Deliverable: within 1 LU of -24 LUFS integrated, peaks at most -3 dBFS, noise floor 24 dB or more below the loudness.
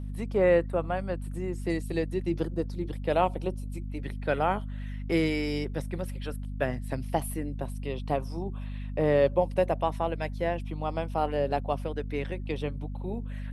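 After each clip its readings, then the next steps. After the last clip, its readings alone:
hum 50 Hz; highest harmonic 250 Hz; hum level -33 dBFS; loudness -30.0 LUFS; peak level -11.0 dBFS; loudness target -24.0 LUFS
-> de-hum 50 Hz, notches 5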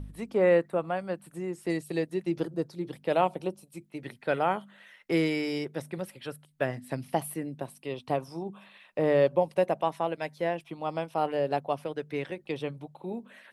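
hum not found; loudness -30.5 LUFS; peak level -11.5 dBFS; loudness target -24.0 LUFS
-> trim +6.5 dB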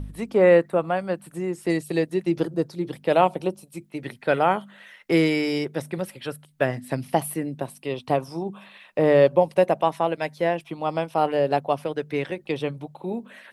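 loudness -24.0 LUFS; peak level -5.0 dBFS; noise floor -54 dBFS

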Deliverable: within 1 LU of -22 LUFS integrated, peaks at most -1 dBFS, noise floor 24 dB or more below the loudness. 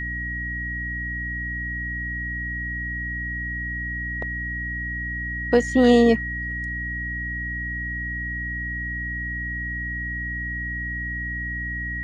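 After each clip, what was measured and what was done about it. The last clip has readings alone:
hum 60 Hz; highest harmonic 300 Hz; hum level -31 dBFS; steady tone 1.9 kHz; tone level -28 dBFS; loudness -25.5 LUFS; peak level -4.5 dBFS; loudness target -22.0 LUFS
-> hum notches 60/120/180/240/300 Hz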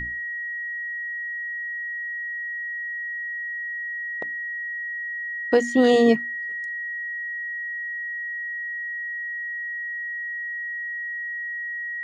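hum not found; steady tone 1.9 kHz; tone level -28 dBFS
-> band-stop 1.9 kHz, Q 30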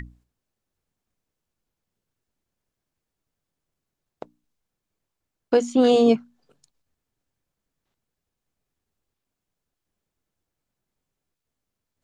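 steady tone not found; loudness -19.5 LUFS; peak level -6.5 dBFS; loudness target -22.0 LUFS
-> trim -2.5 dB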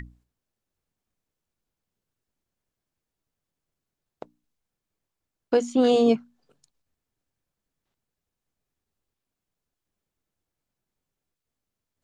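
loudness -22.0 LUFS; peak level -9.0 dBFS; noise floor -86 dBFS

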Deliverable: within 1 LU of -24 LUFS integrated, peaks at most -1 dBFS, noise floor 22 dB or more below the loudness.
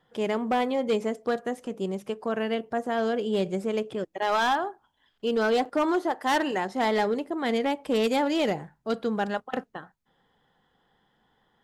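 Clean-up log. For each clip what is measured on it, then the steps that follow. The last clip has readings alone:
clipped samples 1.0%; clipping level -18.5 dBFS; dropouts 1; longest dropout 5.9 ms; loudness -27.5 LUFS; peak level -18.5 dBFS; loudness target -24.0 LUFS
-> clip repair -18.5 dBFS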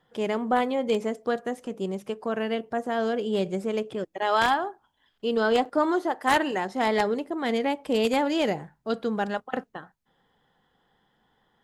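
clipped samples 0.0%; dropouts 1; longest dropout 5.9 ms
-> interpolate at 5.65 s, 5.9 ms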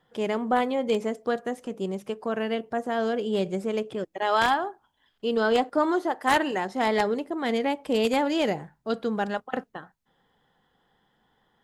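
dropouts 0; loudness -27.0 LUFS; peak level -9.5 dBFS; loudness target -24.0 LUFS
-> trim +3 dB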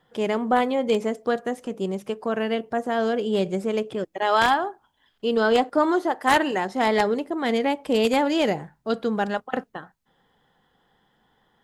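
loudness -24.0 LUFS; peak level -6.5 dBFS; noise floor -69 dBFS

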